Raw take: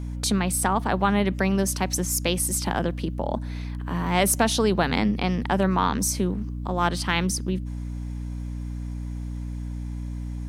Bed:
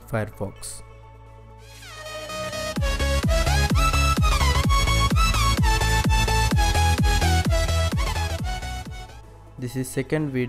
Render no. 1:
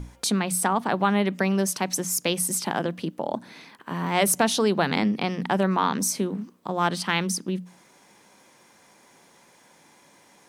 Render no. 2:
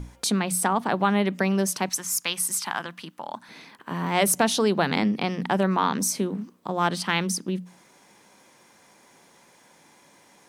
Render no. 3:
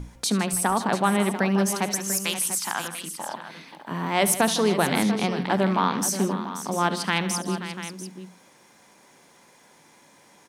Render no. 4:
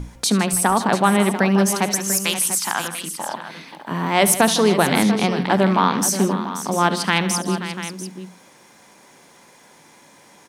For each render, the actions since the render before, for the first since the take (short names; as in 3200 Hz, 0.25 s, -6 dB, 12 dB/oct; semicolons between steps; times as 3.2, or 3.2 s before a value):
notches 60/120/180/240/300 Hz
1.89–3.49 resonant low shelf 750 Hz -11 dB, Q 1.5
tapped delay 72/158/531/692 ms -14.5/-15/-12/-12.5 dB
gain +5.5 dB; limiter -2 dBFS, peak gain reduction 1.5 dB